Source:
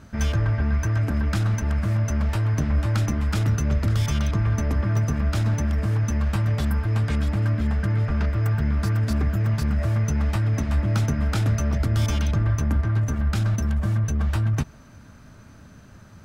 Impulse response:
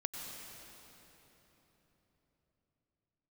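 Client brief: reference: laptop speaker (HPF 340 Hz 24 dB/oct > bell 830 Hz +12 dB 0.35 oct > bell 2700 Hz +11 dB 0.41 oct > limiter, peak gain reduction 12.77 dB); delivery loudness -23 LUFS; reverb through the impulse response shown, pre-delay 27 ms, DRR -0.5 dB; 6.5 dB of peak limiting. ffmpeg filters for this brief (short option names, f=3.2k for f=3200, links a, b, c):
-filter_complex "[0:a]alimiter=limit=-19.5dB:level=0:latency=1,asplit=2[a][b];[1:a]atrim=start_sample=2205,adelay=27[c];[b][c]afir=irnorm=-1:irlink=0,volume=0dB[d];[a][d]amix=inputs=2:normalize=0,highpass=f=340:w=0.5412,highpass=f=340:w=1.3066,equalizer=f=830:t=o:w=0.35:g=12,equalizer=f=2.7k:t=o:w=0.41:g=11,volume=14.5dB,alimiter=limit=-14.5dB:level=0:latency=1"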